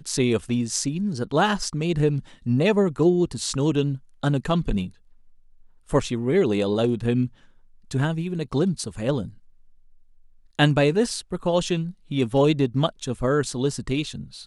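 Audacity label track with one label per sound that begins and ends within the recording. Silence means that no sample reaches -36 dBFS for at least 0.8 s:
5.890000	9.300000	sound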